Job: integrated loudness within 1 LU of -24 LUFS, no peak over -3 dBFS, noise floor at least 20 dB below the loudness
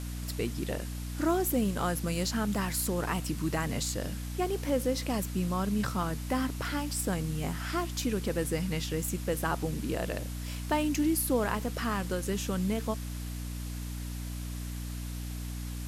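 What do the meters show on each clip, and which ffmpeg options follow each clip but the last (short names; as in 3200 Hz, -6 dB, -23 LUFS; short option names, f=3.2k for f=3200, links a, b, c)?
hum 60 Hz; harmonics up to 300 Hz; hum level -35 dBFS; noise floor -37 dBFS; noise floor target -52 dBFS; loudness -32.0 LUFS; peak -16.0 dBFS; loudness target -24.0 LUFS
-> -af "bandreject=f=60:t=h:w=4,bandreject=f=120:t=h:w=4,bandreject=f=180:t=h:w=4,bandreject=f=240:t=h:w=4,bandreject=f=300:t=h:w=4"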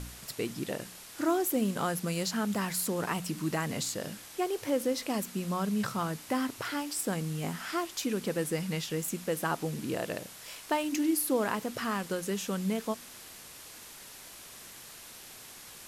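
hum none; noise floor -49 dBFS; noise floor target -53 dBFS
-> -af "afftdn=nr=6:nf=-49"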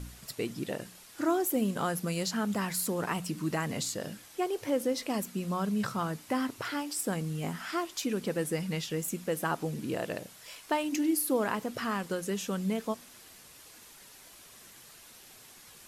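noise floor -53 dBFS; loudness -32.5 LUFS; peak -16.0 dBFS; loudness target -24.0 LUFS
-> -af "volume=8.5dB"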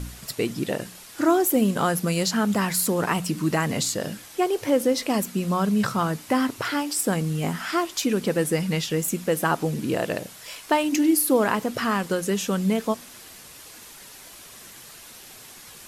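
loudness -24.0 LUFS; peak -7.5 dBFS; noise floor -45 dBFS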